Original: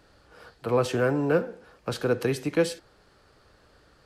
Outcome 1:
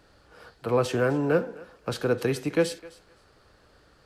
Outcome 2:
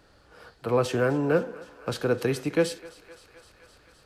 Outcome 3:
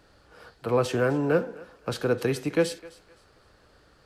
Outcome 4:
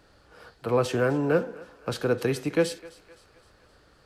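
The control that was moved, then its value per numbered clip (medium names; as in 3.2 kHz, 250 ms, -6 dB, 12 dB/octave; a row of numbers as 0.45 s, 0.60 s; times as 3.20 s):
thinning echo, feedback: 18%, 79%, 29%, 51%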